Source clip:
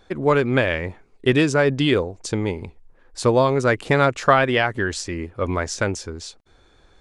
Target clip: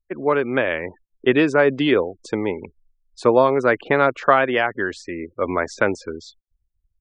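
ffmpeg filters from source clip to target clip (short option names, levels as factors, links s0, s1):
-filter_complex "[0:a]afftfilt=real='re*gte(hypot(re,im),0.0141)':imag='im*gte(hypot(re,im),0.0141)':win_size=1024:overlap=0.75,acrossover=split=210 3100:gain=0.178 1 0.178[s0][s1][s2];[s0][s1][s2]amix=inputs=3:normalize=0,dynaudnorm=f=530:g=3:m=3.76,volume=0.891"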